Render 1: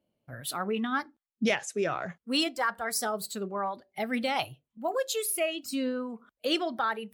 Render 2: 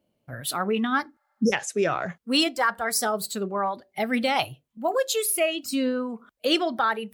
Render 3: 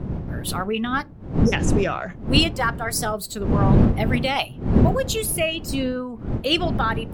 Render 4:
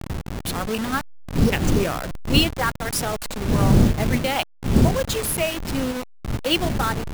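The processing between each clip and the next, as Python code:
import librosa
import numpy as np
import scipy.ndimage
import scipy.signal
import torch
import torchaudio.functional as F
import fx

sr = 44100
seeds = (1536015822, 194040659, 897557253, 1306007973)

y1 = fx.spec_repair(x, sr, seeds[0], start_s=1.17, length_s=0.33, low_hz=580.0, high_hz=5200.0, source='before')
y1 = F.gain(torch.from_numpy(y1), 5.5).numpy()
y2 = fx.dmg_wind(y1, sr, seeds[1], corner_hz=200.0, level_db=-23.0)
y2 = fx.dynamic_eq(y2, sr, hz=2800.0, q=3.6, threshold_db=-43.0, ratio=4.0, max_db=5)
y3 = fx.delta_hold(y2, sr, step_db=-23.0)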